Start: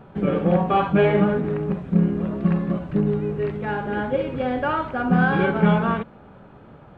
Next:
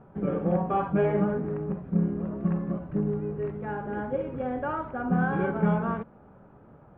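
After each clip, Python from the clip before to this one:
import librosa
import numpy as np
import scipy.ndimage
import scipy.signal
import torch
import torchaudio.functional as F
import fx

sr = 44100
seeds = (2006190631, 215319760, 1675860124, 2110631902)

y = scipy.signal.sosfilt(scipy.signal.butter(2, 1500.0, 'lowpass', fs=sr, output='sos'), x)
y = y * 10.0 ** (-6.5 / 20.0)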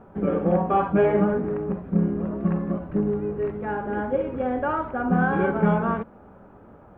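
y = fx.peak_eq(x, sr, hz=140.0, db=-14.0, octaves=0.29)
y = y * 10.0 ** (5.5 / 20.0)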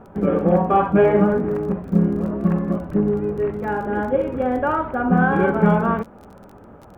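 y = fx.dmg_crackle(x, sr, seeds[0], per_s=25.0, level_db=-39.0)
y = y * 10.0 ** (4.5 / 20.0)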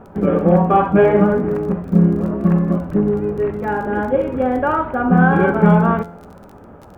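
y = fx.comb_fb(x, sr, f0_hz=86.0, decay_s=0.69, harmonics='all', damping=0.0, mix_pct=50)
y = y * 10.0 ** (8.0 / 20.0)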